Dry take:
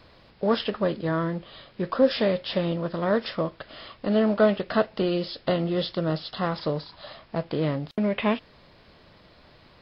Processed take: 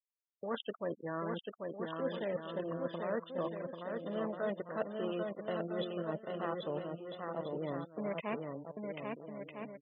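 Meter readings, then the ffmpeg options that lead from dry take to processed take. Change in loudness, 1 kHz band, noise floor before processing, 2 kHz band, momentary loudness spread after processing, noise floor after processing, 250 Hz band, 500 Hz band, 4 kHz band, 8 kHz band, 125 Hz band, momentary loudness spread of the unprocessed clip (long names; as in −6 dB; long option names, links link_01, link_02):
−13.5 dB, −10.5 dB, −55 dBFS, −12.0 dB, 6 LU, −83 dBFS, −14.0 dB, −11.5 dB, −16.5 dB, can't be measured, −15.0 dB, 12 LU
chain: -filter_complex "[0:a]acrossover=split=4200[link_01][link_02];[link_02]acompressor=threshold=-53dB:ratio=4:attack=1:release=60[link_03];[link_01][link_03]amix=inputs=2:normalize=0,aresample=16000,aeval=exprs='sgn(val(0))*max(abs(val(0))-0.015,0)':channel_layout=same,aresample=44100,afftfilt=real='re*gte(hypot(re,im),0.0316)':imag='im*gte(hypot(re,im),0.0316)':win_size=1024:overlap=0.75,areverse,acompressor=threshold=-31dB:ratio=10,areverse,highpass=frequency=330:poles=1,aecho=1:1:790|1304|1637|1854|1995:0.631|0.398|0.251|0.158|0.1,volume=-1dB"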